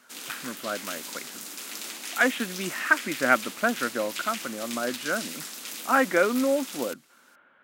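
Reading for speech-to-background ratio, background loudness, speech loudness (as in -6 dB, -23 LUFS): 8.5 dB, -35.5 LUFS, -27.0 LUFS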